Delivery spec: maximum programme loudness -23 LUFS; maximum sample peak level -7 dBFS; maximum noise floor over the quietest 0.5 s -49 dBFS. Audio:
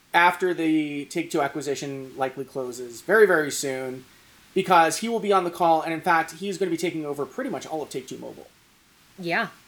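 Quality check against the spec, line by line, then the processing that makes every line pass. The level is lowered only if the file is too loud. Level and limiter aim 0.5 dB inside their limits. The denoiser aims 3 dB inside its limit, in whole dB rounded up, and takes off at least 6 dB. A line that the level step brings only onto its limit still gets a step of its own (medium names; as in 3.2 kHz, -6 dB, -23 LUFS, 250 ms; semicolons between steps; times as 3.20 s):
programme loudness -24.0 LUFS: pass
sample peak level -2.5 dBFS: fail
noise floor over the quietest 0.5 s -58 dBFS: pass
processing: peak limiter -7.5 dBFS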